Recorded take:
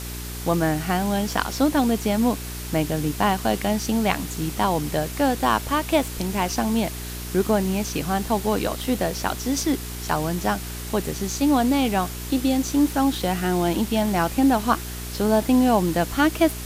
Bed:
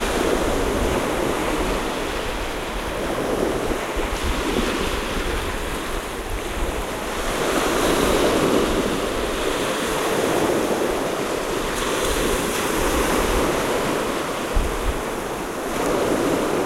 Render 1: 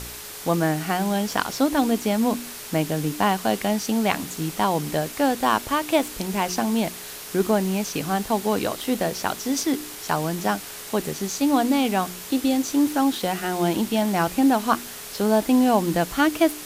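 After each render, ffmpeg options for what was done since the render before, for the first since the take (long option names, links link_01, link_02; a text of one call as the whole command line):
ffmpeg -i in.wav -af "bandreject=frequency=60:width_type=h:width=4,bandreject=frequency=120:width_type=h:width=4,bandreject=frequency=180:width_type=h:width=4,bandreject=frequency=240:width_type=h:width=4,bandreject=frequency=300:width_type=h:width=4,bandreject=frequency=360:width_type=h:width=4" out.wav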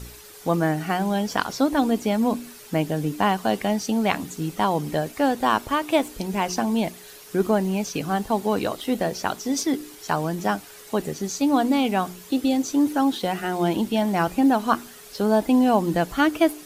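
ffmpeg -i in.wav -af "afftdn=noise_reduction=10:noise_floor=-37" out.wav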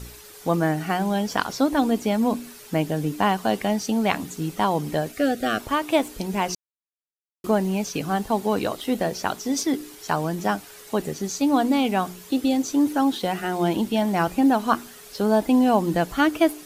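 ffmpeg -i in.wav -filter_complex "[0:a]asettb=1/sr,asplit=3[link_01][link_02][link_03];[link_01]atrim=end=5.124[link_04];[link_02]atrim=start=5.12:end=5.6,asetpts=PTS-STARTPTS,afade=type=in:duration=0.004:curve=qsin,afade=type=out:start_time=0.476:duration=0.004:curve=qsin,asuperstop=centerf=950:order=12:qfactor=2.3[link_05];[link_03]atrim=start=5.596[link_06];[link_04][link_05]acrossfade=duration=0.004:curve1=hsin:curve2=qsin[link_07];[link_07][link_06]acrossfade=duration=0.004:curve1=qsin:curve2=hsin,asplit=3[link_08][link_09][link_10];[link_08]atrim=end=6.55,asetpts=PTS-STARTPTS,afade=type=out:start_time=6.546:duration=0.004:curve=hsin[link_11];[link_09]atrim=start=6.55:end=7.44,asetpts=PTS-STARTPTS,volume=0[link_12];[link_10]atrim=start=7.44,asetpts=PTS-STARTPTS,afade=type=in:duration=0.004:curve=hsin[link_13];[link_11][link_12][link_13]concat=n=3:v=0:a=1" out.wav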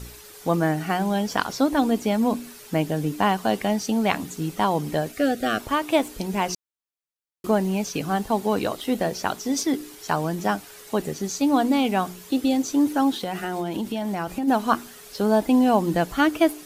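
ffmpeg -i in.wav -filter_complex "[0:a]asplit=3[link_01][link_02][link_03];[link_01]afade=type=out:start_time=13.18:duration=0.02[link_04];[link_02]acompressor=threshold=-23dB:ratio=6:attack=3.2:release=140:knee=1:detection=peak,afade=type=in:start_time=13.18:duration=0.02,afade=type=out:start_time=14.47:duration=0.02[link_05];[link_03]afade=type=in:start_time=14.47:duration=0.02[link_06];[link_04][link_05][link_06]amix=inputs=3:normalize=0" out.wav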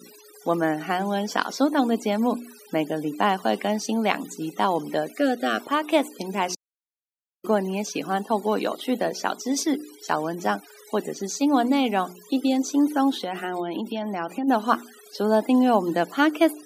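ffmpeg -i in.wav -af "highpass=frequency=210:width=0.5412,highpass=frequency=210:width=1.3066,afftfilt=real='re*gte(hypot(re,im),0.00794)':imag='im*gte(hypot(re,im),0.00794)':win_size=1024:overlap=0.75" out.wav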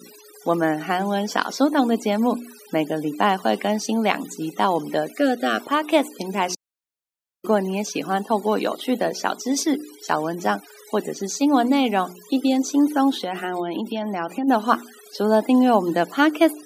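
ffmpeg -i in.wav -af "volume=2.5dB,alimiter=limit=-2dB:level=0:latency=1" out.wav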